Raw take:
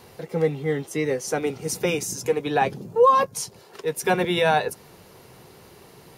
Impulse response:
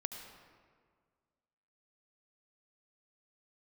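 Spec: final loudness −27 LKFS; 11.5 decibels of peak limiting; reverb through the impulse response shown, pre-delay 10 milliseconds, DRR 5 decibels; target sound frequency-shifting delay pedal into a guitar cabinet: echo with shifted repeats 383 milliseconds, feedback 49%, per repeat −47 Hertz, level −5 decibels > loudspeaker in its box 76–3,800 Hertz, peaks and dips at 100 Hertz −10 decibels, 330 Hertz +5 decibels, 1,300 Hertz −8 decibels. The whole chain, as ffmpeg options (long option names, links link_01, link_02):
-filter_complex "[0:a]alimiter=limit=-19dB:level=0:latency=1,asplit=2[link_01][link_02];[1:a]atrim=start_sample=2205,adelay=10[link_03];[link_02][link_03]afir=irnorm=-1:irlink=0,volume=-4.5dB[link_04];[link_01][link_04]amix=inputs=2:normalize=0,asplit=7[link_05][link_06][link_07][link_08][link_09][link_10][link_11];[link_06]adelay=383,afreqshift=-47,volume=-5dB[link_12];[link_07]adelay=766,afreqshift=-94,volume=-11.2dB[link_13];[link_08]adelay=1149,afreqshift=-141,volume=-17.4dB[link_14];[link_09]adelay=1532,afreqshift=-188,volume=-23.6dB[link_15];[link_10]adelay=1915,afreqshift=-235,volume=-29.8dB[link_16];[link_11]adelay=2298,afreqshift=-282,volume=-36dB[link_17];[link_05][link_12][link_13][link_14][link_15][link_16][link_17]amix=inputs=7:normalize=0,highpass=76,equalizer=frequency=100:width_type=q:width=4:gain=-10,equalizer=frequency=330:width_type=q:width=4:gain=5,equalizer=frequency=1300:width_type=q:width=4:gain=-8,lowpass=frequency=3800:width=0.5412,lowpass=frequency=3800:width=1.3066"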